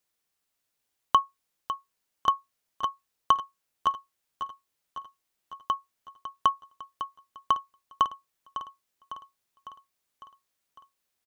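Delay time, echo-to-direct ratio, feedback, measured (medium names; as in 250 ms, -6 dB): 553 ms, -9.5 dB, 58%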